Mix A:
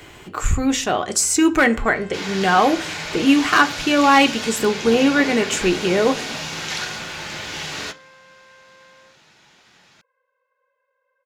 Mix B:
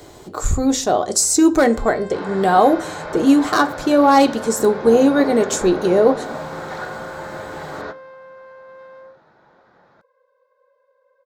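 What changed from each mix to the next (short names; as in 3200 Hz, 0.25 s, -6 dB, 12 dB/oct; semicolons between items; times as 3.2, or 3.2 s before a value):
first sound +7.5 dB; second sound: add synth low-pass 1500 Hz, resonance Q 1.8; master: add EQ curve 180 Hz 0 dB, 610 Hz +6 dB, 2800 Hz -13 dB, 3900 Hz +2 dB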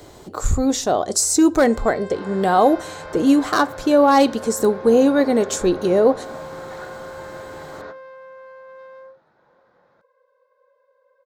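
speech: send -9.0 dB; second sound -7.5 dB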